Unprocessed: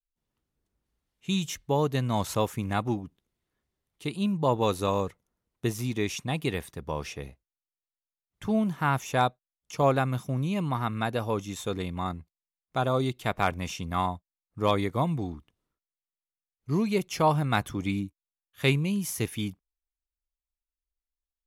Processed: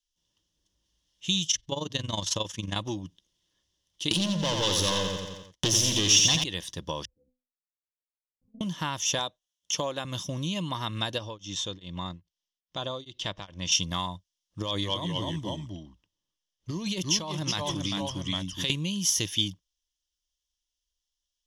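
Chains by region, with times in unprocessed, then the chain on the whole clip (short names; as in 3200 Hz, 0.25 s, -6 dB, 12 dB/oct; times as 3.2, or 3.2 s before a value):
1.46–2.76 LPF 9400 Hz + AM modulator 22 Hz, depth 70%
4.11–6.44 sample leveller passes 5 + feedback echo 87 ms, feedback 39%, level -4.5 dB
7.05–8.61 level quantiser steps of 23 dB + Gaussian blur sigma 18 samples + metallic resonator 250 Hz, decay 0.33 s, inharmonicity 0.008
9.19–10.05 HPF 170 Hz 6 dB/oct + bell 4900 Hz -6.5 dB 0.35 oct
11.18–13.72 compressor 1.5:1, threshold -39 dBFS + air absorption 82 m + beating tremolo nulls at 2.4 Hz
14.6–18.7 echoes that change speed 0.223 s, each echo -1 st, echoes 2, each echo -6 dB + negative-ratio compressor -29 dBFS + mismatched tape noise reduction decoder only
whole clip: ripple EQ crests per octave 1.2, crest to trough 8 dB; compressor 5:1, threshold -29 dBFS; band shelf 4600 Hz +15 dB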